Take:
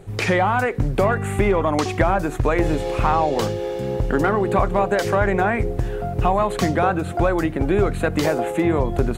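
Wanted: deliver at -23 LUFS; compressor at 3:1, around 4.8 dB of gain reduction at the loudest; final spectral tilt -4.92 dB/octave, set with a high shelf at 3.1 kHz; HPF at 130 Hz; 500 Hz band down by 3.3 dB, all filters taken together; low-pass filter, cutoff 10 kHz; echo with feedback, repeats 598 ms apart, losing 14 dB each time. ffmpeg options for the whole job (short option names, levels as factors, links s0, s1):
-af "highpass=130,lowpass=10000,equalizer=f=500:t=o:g=-4.5,highshelf=f=3100:g=7,acompressor=threshold=0.0794:ratio=3,aecho=1:1:598|1196:0.2|0.0399,volume=1.41"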